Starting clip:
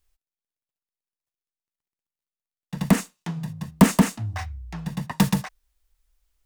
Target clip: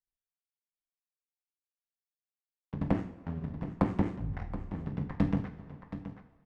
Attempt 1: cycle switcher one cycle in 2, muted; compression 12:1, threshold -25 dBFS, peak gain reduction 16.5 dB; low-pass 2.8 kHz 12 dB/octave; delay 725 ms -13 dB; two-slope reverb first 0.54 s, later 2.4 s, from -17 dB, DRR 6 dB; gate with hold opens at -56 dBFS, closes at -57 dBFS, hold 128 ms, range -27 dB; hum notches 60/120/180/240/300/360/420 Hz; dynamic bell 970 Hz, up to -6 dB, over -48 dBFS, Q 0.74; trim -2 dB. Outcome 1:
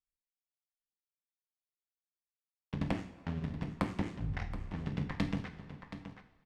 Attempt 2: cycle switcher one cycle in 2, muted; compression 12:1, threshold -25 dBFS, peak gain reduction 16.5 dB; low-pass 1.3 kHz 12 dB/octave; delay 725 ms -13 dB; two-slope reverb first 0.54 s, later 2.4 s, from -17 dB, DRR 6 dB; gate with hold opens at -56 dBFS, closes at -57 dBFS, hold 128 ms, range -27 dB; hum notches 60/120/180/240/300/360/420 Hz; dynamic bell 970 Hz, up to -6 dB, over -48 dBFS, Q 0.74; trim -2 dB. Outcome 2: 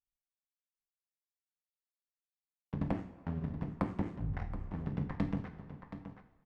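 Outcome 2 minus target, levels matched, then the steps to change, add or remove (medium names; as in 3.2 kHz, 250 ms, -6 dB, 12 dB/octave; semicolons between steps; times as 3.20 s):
compression: peak gain reduction +7 dB
change: compression 12:1, threshold -17.5 dBFS, peak gain reduction 9.5 dB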